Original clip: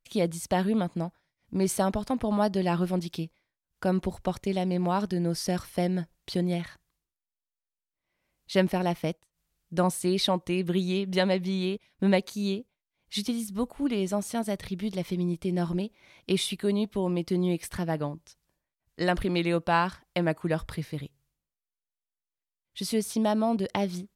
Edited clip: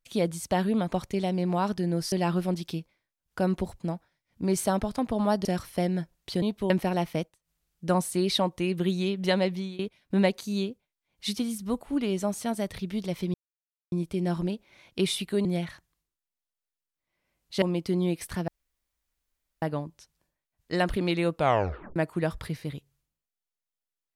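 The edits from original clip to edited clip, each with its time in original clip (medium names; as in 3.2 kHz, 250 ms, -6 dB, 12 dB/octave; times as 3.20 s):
0.92–2.57 s: swap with 4.25–5.45 s
6.42–8.59 s: swap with 16.76–17.04 s
11.40–11.68 s: fade out, to -20.5 dB
15.23 s: insert silence 0.58 s
17.90 s: insert room tone 1.14 s
19.63 s: tape stop 0.61 s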